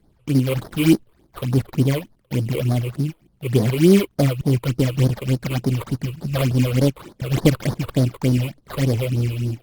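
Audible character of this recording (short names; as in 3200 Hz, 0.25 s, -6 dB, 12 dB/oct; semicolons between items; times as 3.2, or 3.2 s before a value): aliases and images of a low sample rate 2700 Hz, jitter 20%; phasing stages 8, 3.4 Hz, lowest notch 210–2700 Hz; Opus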